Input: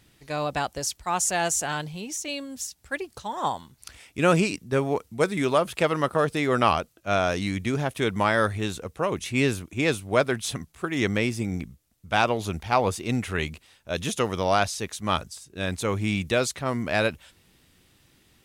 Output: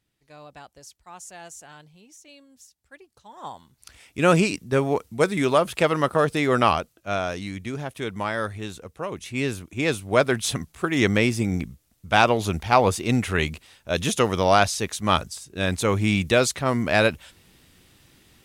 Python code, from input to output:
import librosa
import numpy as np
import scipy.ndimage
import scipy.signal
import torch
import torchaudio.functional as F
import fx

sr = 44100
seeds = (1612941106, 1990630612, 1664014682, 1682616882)

y = fx.gain(x, sr, db=fx.line((3.14, -17.0), (3.49, -9.5), (4.3, 2.5), (6.57, 2.5), (7.44, -5.0), (9.18, -5.0), (10.45, 4.5)))